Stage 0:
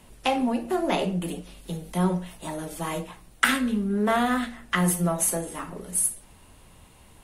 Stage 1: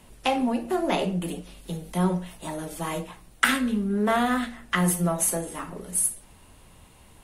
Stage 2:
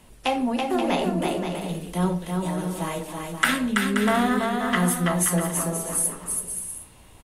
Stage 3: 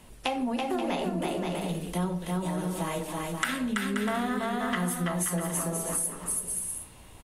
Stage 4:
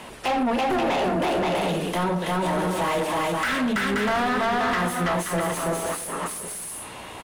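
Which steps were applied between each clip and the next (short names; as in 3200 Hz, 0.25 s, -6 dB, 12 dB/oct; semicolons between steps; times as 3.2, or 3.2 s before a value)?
nothing audible
bouncing-ball echo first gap 0.33 s, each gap 0.6×, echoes 5
compressor 4:1, threshold -27 dBFS, peak gain reduction 11 dB
overdrive pedal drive 32 dB, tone 2000 Hz, clips at -9.5 dBFS; gain -5 dB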